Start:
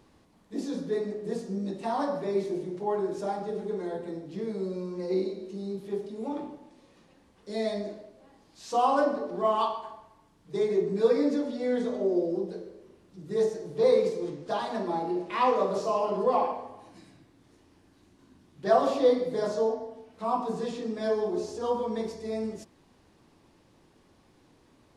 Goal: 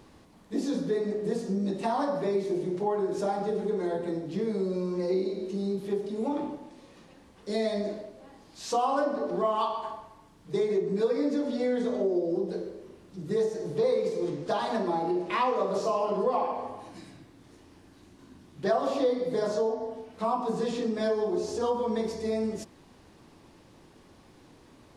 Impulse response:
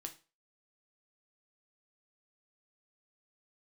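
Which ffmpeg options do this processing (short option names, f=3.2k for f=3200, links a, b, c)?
-af "acompressor=threshold=-32dB:ratio=3,volume=6dB"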